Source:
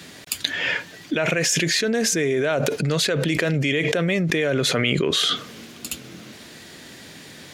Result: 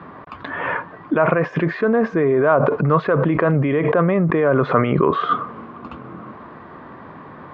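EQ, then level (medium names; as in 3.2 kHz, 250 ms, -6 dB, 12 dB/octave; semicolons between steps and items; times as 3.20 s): resonant low-pass 1.1 kHz, resonance Q 6.4; distance through air 180 m; +4.5 dB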